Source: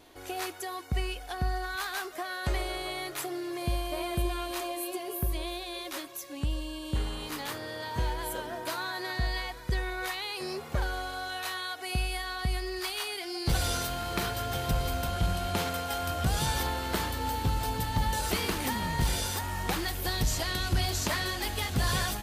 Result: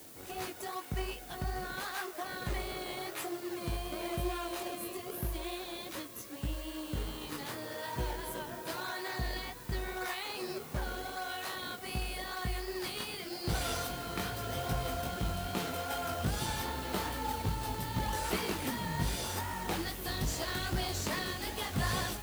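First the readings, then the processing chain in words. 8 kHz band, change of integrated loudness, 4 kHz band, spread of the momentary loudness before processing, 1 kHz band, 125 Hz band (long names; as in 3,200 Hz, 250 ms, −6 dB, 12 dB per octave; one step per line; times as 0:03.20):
−5.0 dB, −4.5 dB, −5.5 dB, 7 LU, −4.5 dB, −6.0 dB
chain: chorus effect 2.5 Hz, delay 16 ms, depth 5.4 ms
background noise blue −50 dBFS
in parallel at −5 dB: sample-and-hold swept by an LFO 32×, swing 160% 0.86 Hz
on the sum: high-pass filter 110 Hz 6 dB per octave
level −3 dB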